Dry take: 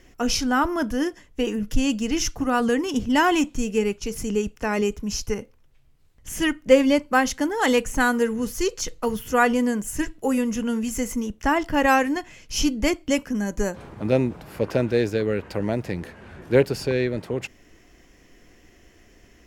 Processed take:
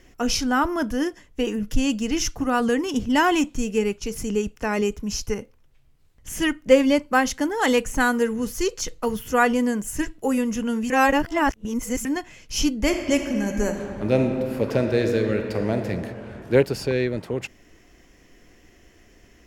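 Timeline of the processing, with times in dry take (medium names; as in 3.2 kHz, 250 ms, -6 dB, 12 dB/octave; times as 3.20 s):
10.90–12.05 s: reverse
12.81–15.87 s: reverb throw, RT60 2.5 s, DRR 4.5 dB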